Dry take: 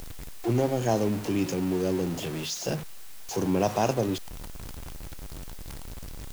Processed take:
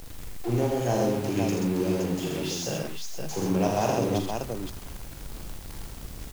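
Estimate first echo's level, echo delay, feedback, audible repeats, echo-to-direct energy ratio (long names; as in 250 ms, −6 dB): −5.0 dB, 42 ms, repeats not evenly spaced, 4, 1.5 dB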